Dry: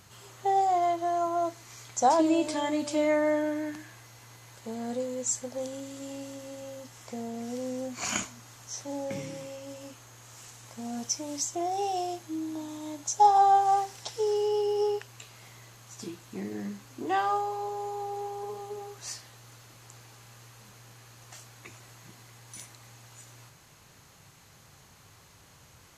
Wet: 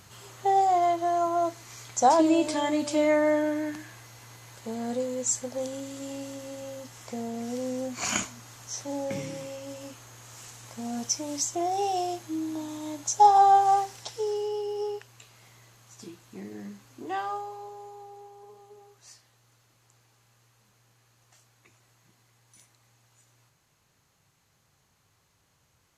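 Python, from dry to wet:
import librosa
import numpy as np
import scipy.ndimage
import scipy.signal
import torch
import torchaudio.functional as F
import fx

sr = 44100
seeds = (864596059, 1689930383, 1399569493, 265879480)

y = fx.gain(x, sr, db=fx.line((13.68, 2.5), (14.6, -4.5), (17.2, -4.5), (18.3, -12.5)))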